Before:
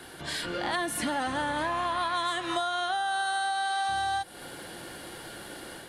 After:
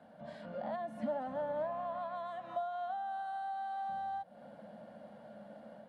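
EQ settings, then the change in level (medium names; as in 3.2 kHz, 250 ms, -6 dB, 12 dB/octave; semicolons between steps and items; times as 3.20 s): two resonant band-passes 360 Hz, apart 1.5 oct; +2.5 dB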